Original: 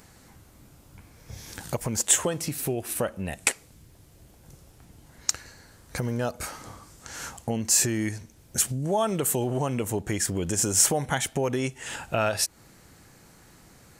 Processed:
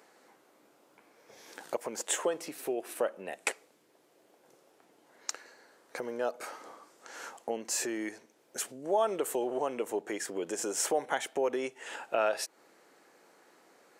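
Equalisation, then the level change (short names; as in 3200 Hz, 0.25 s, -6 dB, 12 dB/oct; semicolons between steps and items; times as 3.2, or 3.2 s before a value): ladder high-pass 310 Hz, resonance 25%; high shelf 4000 Hz -11 dB; +2.5 dB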